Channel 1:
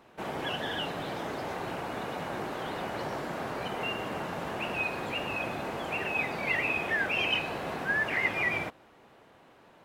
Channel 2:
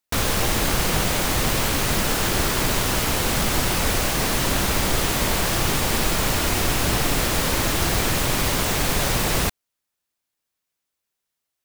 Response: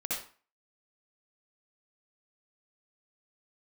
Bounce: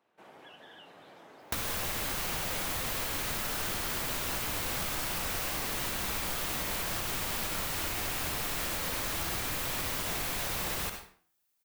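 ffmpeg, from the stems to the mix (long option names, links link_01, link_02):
-filter_complex "[0:a]highpass=frequency=290:poles=1,acompressor=threshold=-32dB:ratio=6,volume=-11.5dB[link_01];[1:a]highshelf=frequency=11000:gain=10,alimiter=limit=-11dB:level=0:latency=1:release=344,adelay=1400,volume=1dB,asplit=2[link_02][link_03];[link_03]volume=-9dB[link_04];[2:a]atrim=start_sample=2205[link_05];[link_04][link_05]afir=irnorm=-1:irlink=0[link_06];[link_01][link_02][link_06]amix=inputs=3:normalize=0,acrossover=split=660|4500[link_07][link_08][link_09];[link_07]acompressor=threshold=-36dB:ratio=4[link_10];[link_08]acompressor=threshold=-33dB:ratio=4[link_11];[link_09]acompressor=threshold=-32dB:ratio=4[link_12];[link_10][link_11][link_12]amix=inputs=3:normalize=0,flanger=delay=9.5:depth=2.8:regen=87:speed=2:shape=triangular"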